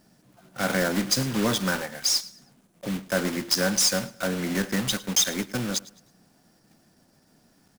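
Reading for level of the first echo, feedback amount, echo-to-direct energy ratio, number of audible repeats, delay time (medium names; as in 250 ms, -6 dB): -20.0 dB, 32%, -19.5 dB, 2, 107 ms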